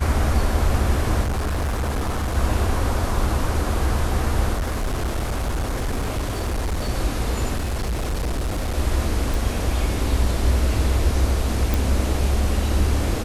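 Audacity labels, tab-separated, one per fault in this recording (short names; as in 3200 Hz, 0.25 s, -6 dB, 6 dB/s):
1.230000	2.370000	clipped -20 dBFS
4.530000	6.900000	clipped -20 dBFS
7.560000	8.770000	clipped -20.5 dBFS
9.340000	9.340000	pop
11.740000	11.740000	pop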